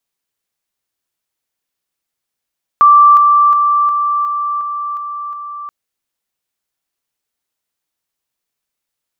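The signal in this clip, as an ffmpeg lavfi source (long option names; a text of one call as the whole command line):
ffmpeg -f lavfi -i "aevalsrc='pow(10,(-3-3*floor(t/0.36))/20)*sin(2*PI*1170*t)':duration=2.88:sample_rate=44100" out.wav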